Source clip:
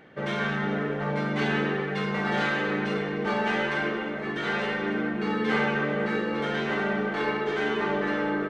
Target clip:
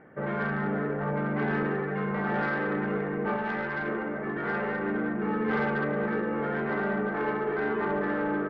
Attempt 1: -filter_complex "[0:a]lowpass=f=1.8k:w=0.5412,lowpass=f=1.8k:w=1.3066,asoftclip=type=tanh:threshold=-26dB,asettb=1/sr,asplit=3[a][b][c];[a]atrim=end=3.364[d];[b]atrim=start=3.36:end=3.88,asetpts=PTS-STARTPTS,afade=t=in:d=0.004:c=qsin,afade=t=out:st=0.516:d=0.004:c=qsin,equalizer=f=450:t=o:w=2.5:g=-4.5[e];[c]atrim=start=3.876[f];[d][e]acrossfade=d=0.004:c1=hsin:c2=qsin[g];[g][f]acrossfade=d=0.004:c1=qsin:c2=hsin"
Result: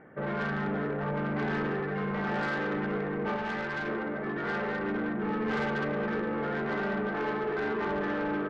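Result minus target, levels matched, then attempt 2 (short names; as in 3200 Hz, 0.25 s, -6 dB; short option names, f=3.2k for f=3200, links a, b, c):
soft clip: distortion +8 dB
-filter_complex "[0:a]lowpass=f=1.8k:w=0.5412,lowpass=f=1.8k:w=1.3066,asoftclip=type=tanh:threshold=-19.5dB,asettb=1/sr,asplit=3[a][b][c];[a]atrim=end=3.364[d];[b]atrim=start=3.36:end=3.88,asetpts=PTS-STARTPTS,afade=t=in:d=0.004:c=qsin,afade=t=out:st=0.516:d=0.004:c=qsin,equalizer=f=450:t=o:w=2.5:g=-4.5[e];[c]atrim=start=3.876[f];[d][e]acrossfade=d=0.004:c1=hsin:c2=qsin[g];[g][f]acrossfade=d=0.004:c1=qsin:c2=hsin"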